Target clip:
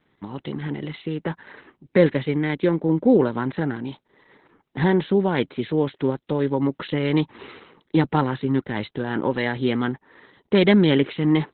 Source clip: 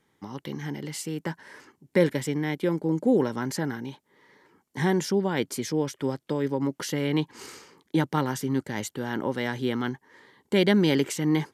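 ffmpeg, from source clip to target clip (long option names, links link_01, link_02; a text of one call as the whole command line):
ffmpeg -i in.wav -filter_complex "[0:a]asplit=3[link_01][link_02][link_03];[link_01]afade=type=out:start_time=2.92:duration=0.02[link_04];[link_02]lowpass=8700,afade=type=in:start_time=2.92:duration=0.02,afade=type=out:start_time=4.81:duration=0.02[link_05];[link_03]afade=type=in:start_time=4.81:duration=0.02[link_06];[link_04][link_05][link_06]amix=inputs=3:normalize=0,volume=5.5dB" -ar 48000 -c:a libopus -b:a 8k out.opus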